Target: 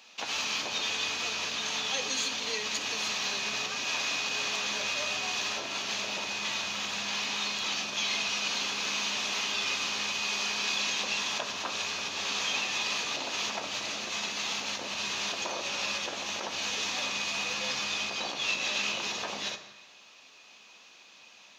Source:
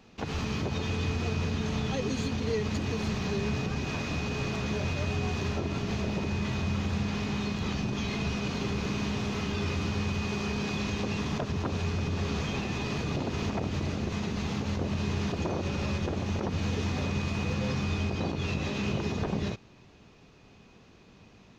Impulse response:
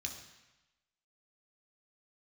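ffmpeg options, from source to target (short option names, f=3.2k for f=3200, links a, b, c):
-filter_complex "[0:a]highpass=950,asplit=2[a][b];[1:a]atrim=start_sample=2205[c];[b][c]afir=irnorm=-1:irlink=0,volume=-0.5dB[d];[a][d]amix=inputs=2:normalize=0,volume=4.5dB"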